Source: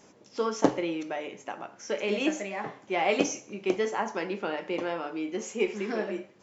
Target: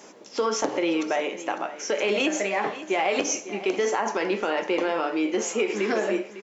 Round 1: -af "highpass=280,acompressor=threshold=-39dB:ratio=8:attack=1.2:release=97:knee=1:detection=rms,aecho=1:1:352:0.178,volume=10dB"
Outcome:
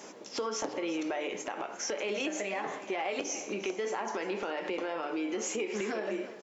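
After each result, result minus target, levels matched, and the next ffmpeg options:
compressor: peak gain reduction +9.5 dB; echo 0.2 s early
-af "highpass=280,acompressor=threshold=-28dB:ratio=8:attack=1.2:release=97:knee=1:detection=rms,aecho=1:1:352:0.178,volume=10dB"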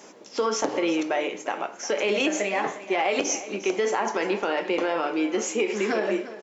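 echo 0.2 s early
-af "highpass=280,acompressor=threshold=-28dB:ratio=8:attack=1.2:release=97:knee=1:detection=rms,aecho=1:1:552:0.178,volume=10dB"

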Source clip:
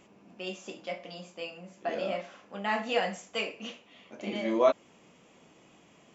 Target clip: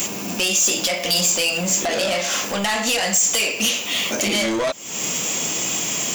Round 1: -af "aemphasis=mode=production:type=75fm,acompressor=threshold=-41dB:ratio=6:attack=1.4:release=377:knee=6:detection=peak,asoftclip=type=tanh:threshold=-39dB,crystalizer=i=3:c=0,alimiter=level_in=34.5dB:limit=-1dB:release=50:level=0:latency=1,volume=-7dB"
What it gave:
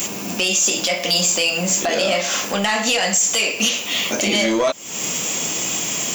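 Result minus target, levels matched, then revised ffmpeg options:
soft clip: distortion -8 dB
-af "aemphasis=mode=production:type=75fm,acompressor=threshold=-41dB:ratio=6:attack=1.4:release=377:knee=6:detection=peak,asoftclip=type=tanh:threshold=-46dB,crystalizer=i=3:c=0,alimiter=level_in=34.5dB:limit=-1dB:release=50:level=0:latency=1,volume=-7dB"

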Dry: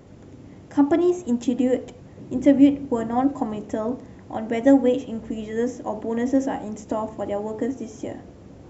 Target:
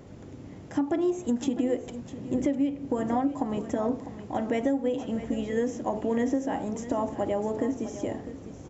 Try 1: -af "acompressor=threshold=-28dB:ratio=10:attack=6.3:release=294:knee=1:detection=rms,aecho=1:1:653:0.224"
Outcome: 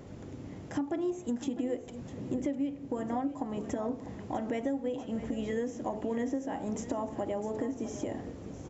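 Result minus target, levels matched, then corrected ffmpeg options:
compressor: peak gain reduction +6.5 dB
-af "acompressor=threshold=-21dB:ratio=10:attack=6.3:release=294:knee=1:detection=rms,aecho=1:1:653:0.224"

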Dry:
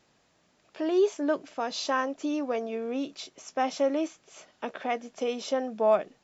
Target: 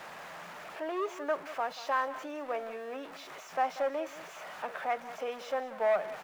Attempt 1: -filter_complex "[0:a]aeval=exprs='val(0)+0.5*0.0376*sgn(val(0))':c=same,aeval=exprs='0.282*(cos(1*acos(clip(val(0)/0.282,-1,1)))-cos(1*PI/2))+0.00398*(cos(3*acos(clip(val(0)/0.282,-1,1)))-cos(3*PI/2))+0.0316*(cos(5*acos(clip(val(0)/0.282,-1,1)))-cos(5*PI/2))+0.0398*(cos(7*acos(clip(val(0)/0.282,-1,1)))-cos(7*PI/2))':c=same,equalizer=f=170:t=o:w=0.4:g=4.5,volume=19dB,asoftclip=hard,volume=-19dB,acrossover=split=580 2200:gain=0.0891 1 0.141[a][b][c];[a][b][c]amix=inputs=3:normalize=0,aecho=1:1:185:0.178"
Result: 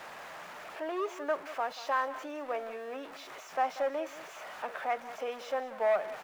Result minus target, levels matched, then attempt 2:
125 Hz band -4.5 dB
-filter_complex "[0:a]aeval=exprs='val(0)+0.5*0.0376*sgn(val(0))':c=same,aeval=exprs='0.282*(cos(1*acos(clip(val(0)/0.282,-1,1)))-cos(1*PI/2))+0.00398*(cos(3*acos(clip(val(0)/0.282,-1,1)))-cos(3*PI/2))+0.0316*(cos(5*acos(clip(val(0)/0.282,-1,1)))-cos(5*PI/2))+0.0398*(cos(7*acos(clip(val(0)/0.282,-1,1)))-cos(7*PI/2))':c=same,equalizer=f=170:t=o:w=0.4:g=11.5,volume=19dB,asoftclip=hard,volume=-19dB,acrossover=split=580 2200:gain=0.0891 1 0.141[a][b][c];[a][b][c]amix=inputs=3:normalize=0,aecho=1:1:185:0.178"

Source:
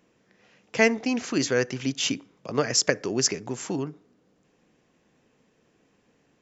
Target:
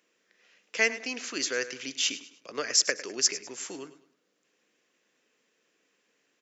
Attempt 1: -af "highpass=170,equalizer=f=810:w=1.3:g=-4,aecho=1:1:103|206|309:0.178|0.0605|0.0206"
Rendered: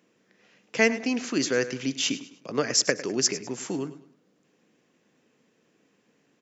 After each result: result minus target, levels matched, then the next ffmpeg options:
125 Hz band +17.0 dB; 1000 Hz band +3.5 dB
-af "highpass=560,equalizer=f=810:w=1.3:g=-4,aecho=1:1:103|206|309:0.178|0.0605|0.0206"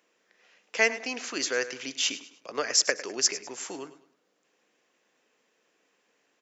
1000 Hz band +4.5 dB
-af "highpass=560,equalizer=f=810:w=1.3:g=-11.5,aecho=1:1:103|206|309:0.178|0.0605|0.0206"

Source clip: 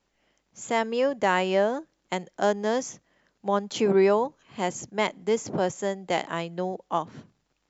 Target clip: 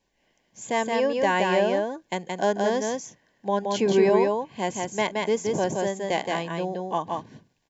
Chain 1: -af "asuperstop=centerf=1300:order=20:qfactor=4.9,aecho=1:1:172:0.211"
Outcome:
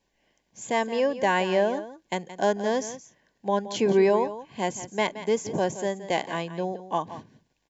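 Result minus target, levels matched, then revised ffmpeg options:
echo-to-direct -10.5 dB
-af "asuperstop=centerf=1300:order=20:qfactor=4.9,aecho=1:1:172:0.708"

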